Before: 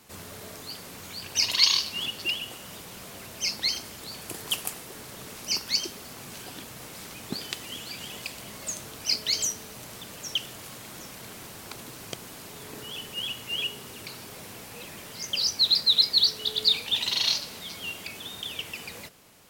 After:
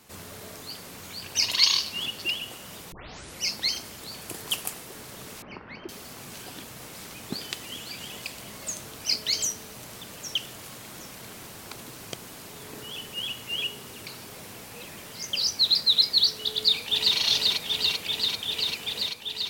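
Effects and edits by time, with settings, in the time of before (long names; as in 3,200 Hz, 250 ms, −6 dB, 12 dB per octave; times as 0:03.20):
0:02.92: tape start 0.54 s
0:05.42–0:05.89: low-pass filter 2,000 Hz 24 dB per octave
0:16.51–0:17.18: delay throw 390 ms, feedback 85%, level −1.5 dB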